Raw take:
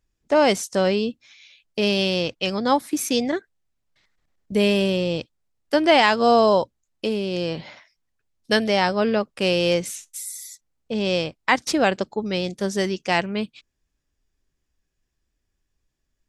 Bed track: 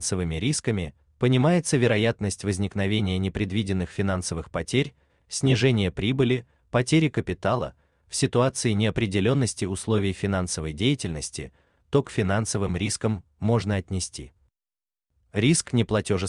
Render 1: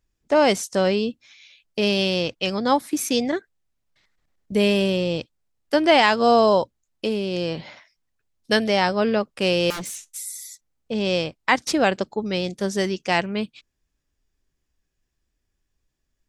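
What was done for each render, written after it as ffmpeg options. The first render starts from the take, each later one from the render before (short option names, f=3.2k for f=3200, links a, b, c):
-filter_complex "[0:a]asettb=1/sr,asplit=3[a][b][c];[a]atrim=end=9.704[d];[b]atrim=start=9.7:end=10.17,asetpts=PTS-STARTPTS,afade=t=in:d=0.004:c=qsin,afade=t=out:st=0.466:d=0.004:c=qsin,aeval=exprs='0.0501*(abs(mod(val(0)/0.0501+3,4)-2)-1)':c=same[e];[c]atrim=start=10.166[f];[d][e]acrossfade=d=0.004:c1=hsin:c2=qsin[g];[g][f]acrossfade=d=0.004:c1=qsin:c2=hsin"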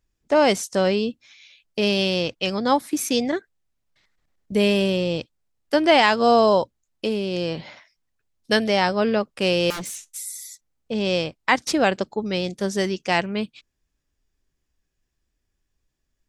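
-af anull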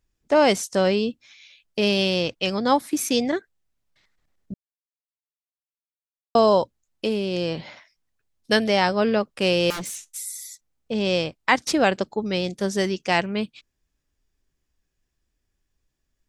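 -filter_complex "[0:a]asplit=3[a][b][c];[a]atrim=end=4.54,asetpts=PTS-STARTPTS,afade=t=out:st=4.536:d=0.004:c=hsin[d];[b]atrim=start=4.54:end=6.35,asetpts=PTS-STARTPTS,volume=0[e];[c]atrim=start=6.35,asetpts=PTS-STARTPTS,afade=t=in:d=0.004:c=hsin[f];[d][e][f]concat=n=3:v=0:a=1"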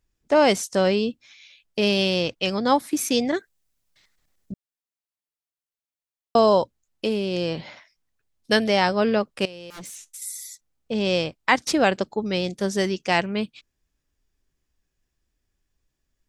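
-filter_complex "[0:a]asettb=1/sr,asplit=3[a][b][c];[a]atrim=end=3.344[d];[b]atrim=start=3.34:end=4.52,asetpts=PTS-STARTPTS,afade=t=in:d=0.004:c=qsin,afade=t=out:st=1.176:d=0.004:c=qsin,highshelf=f=4.1k:g=10.5[e];[c]atrim=start=4.516[f];[d][e]acrossfade=d=0.004:c1=hsin:c2=qsin[g];[g][f]acrossfade=d=0.004:c1=qsin:c2=hsin,asettb=1/sr,asplit=3[h][i][j];[h]atrim=end=9.454[k];[i]atrim=start=9.45:end=10.22,asetpts=PTS-STARTPTS,afade=t=in:d=0.004:c=qsin,afade=t=out:st=0.766:d=0.004:c=qsin,acompressor=threshold=-35dB:ratio=12:attack=3.2:release=140:knee=1:detection=peak[l];[j]atrim=start=10.216[m];[k][l]acrossfade=d=0.004:c1=hsin:c2=qsin[n];[n][m]acrossfade=d=0.004:c1=qsin:c2=hsin"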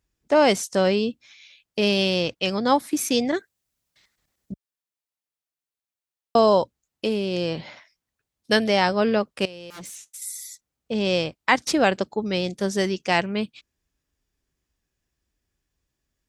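-af "highpass=41"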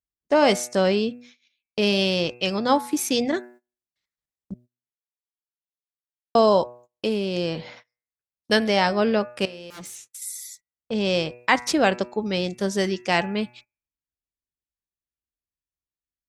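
-af "bandreject=f=121.8:t=h:w=4,bandreject=f=243.6:t=h:w=4,bandreject=f=365.4:t=h:w=4,bandreject=f=487.2:t=h:w=4,bandreject=f=609:t=h:w=4,bandreject=f=730.8:t=h:w=4,bandreject=f=852.6:t=h:w=4,bandreject=f=974.4:t=h:w=4,bandreject=f=1.0962k:t=h:w=4,bandreject=f=1.218k:t=h:w=4,bandreject=f=1.3398k:t=h:w=4,bandreject=f=1.4616k:t=h:w=4,bandreject=f=1.5834k:t=h:w=4,bandreject=f=1.7052k:t=h:w=4,bandreject=f=1.827k:t=h:w=4,bandreject=f=1.9488k:t=h:w=4,bandreject=f=2.0706k:t=h:w=4,bandreject=f=2.1924k:t=h:w=4,bandreject=f=2.3142k:t=h:w=4,bandreject=f=2.436k:t=h:w=4,bandreject=f=2.5578k:t=h:w=4,bandreject=f=2.6796k:t=h:w=4,agate=range=-22dB:threshold=-46dB:ratio=16:detection=peak"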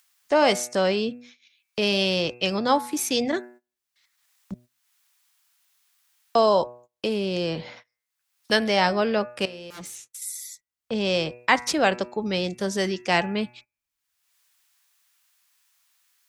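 -filter_complex "[0:a]acrossover=split=490|820[a][b][c];[a]alimiter=limit=-22dB:level=0:latency=1[d];[c]acompressor=mode=upward:threshold=-43dB:ratio=2.5[e];[d][b][e]amix=inputs=3:normalize=0"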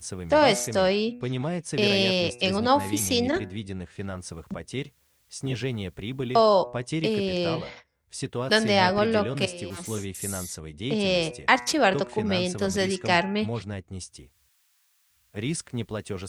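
-filter_complex "[1:a]volume=-9dB[a];[0:a][a]amix=inputs=2:normalize=0"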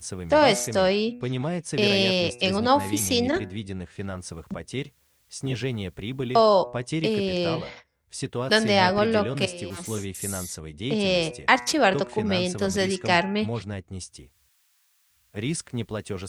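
-af "volume=1dB"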